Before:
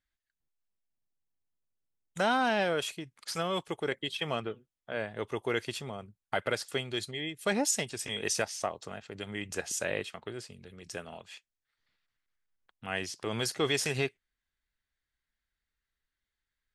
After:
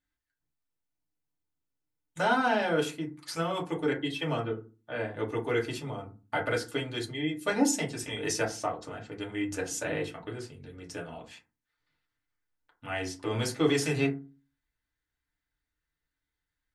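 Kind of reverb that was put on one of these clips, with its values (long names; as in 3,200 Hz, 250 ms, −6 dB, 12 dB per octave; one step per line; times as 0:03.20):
feedback delay network reverb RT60 0.32 s, low-frequency decay 1.55×, high-frequency decay 0.4×, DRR −3 dB
level −3.5 dB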